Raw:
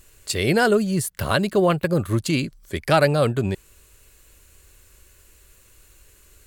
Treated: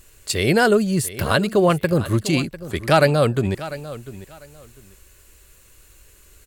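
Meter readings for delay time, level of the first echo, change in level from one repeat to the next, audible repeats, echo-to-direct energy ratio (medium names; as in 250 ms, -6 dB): 697 ms, -15.5 dB, -13.5 dB, 2, -15.5 dB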